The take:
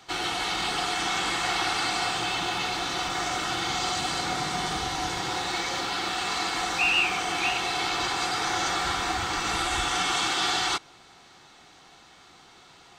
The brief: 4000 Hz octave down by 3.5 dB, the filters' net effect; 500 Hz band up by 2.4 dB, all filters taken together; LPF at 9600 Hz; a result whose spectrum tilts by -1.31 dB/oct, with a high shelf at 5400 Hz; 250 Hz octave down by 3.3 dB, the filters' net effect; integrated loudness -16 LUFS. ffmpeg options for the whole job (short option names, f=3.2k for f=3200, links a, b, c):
-af "lowpass=9.6k,equalizer=f=250:t=o:g=-9,equalizer=f=500:t=o:g=6.5,equalizer=f=4k:t=o:g=-7,highshelf=f=5.4k:g=6.5,volume=11dB"